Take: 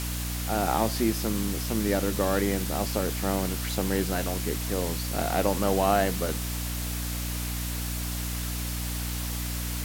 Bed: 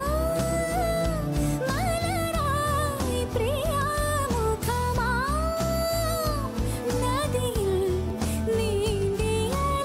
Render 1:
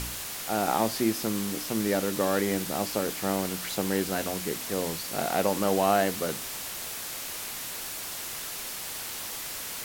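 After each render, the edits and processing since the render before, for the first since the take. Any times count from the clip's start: de-hum 60 Hz, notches 5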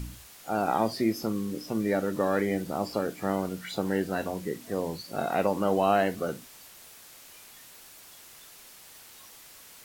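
noise print and reduce 14 dB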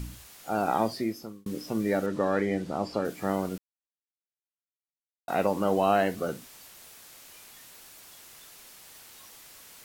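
0.81–1.46 fade out; 2.06–3.05 air absorption 60 m; 3.58–5.28 mute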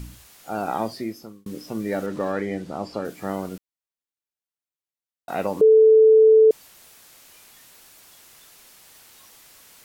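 1.92–2.32 G.711 law mismatch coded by mu; 5.61–6.51 bleep 439 Hz -9.5 dBFS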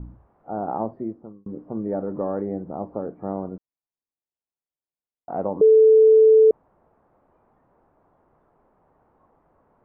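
LPF 1000 Hz 24 dB/oct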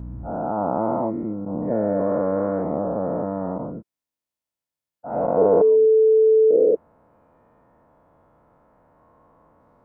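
spectral dilation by 0.48 s; notch comb 390 Hz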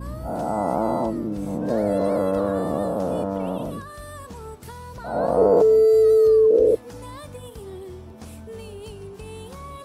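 add bed -12.5 dB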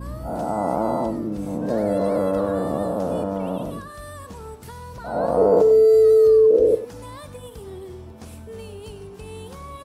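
echo 98 ms -13.5 dB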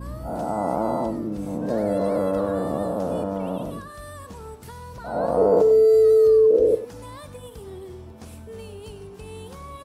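gain -1.5 dB

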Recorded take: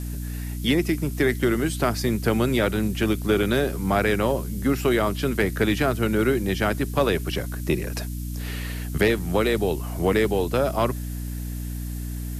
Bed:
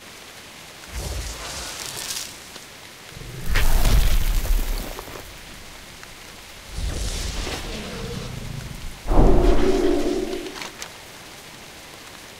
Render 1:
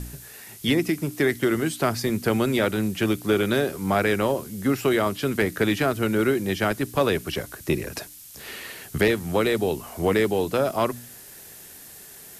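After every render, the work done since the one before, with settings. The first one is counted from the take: de-hum 60 Hz, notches 5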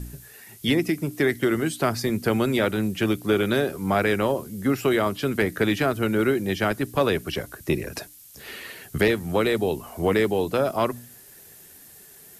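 denoiser 6 dB, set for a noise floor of -45 dBFS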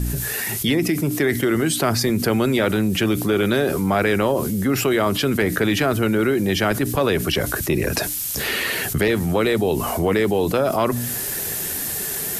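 fast leveller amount 70%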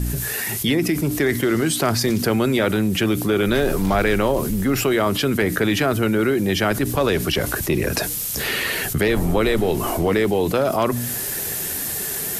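add bed -11.5 dB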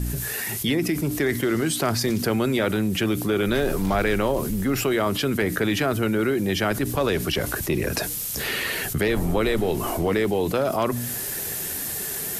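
gain -3.5 dB

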